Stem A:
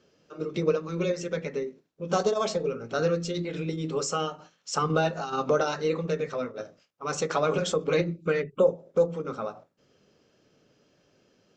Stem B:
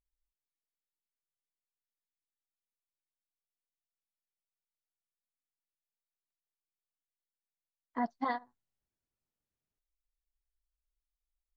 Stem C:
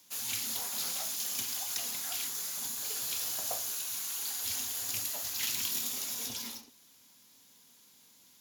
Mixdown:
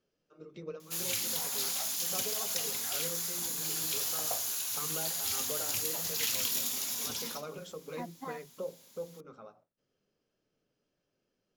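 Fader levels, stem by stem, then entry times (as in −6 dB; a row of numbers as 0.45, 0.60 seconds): −17.5, −9.5, +1.5 decibels; 0.00, 0.00, 0.80 seconds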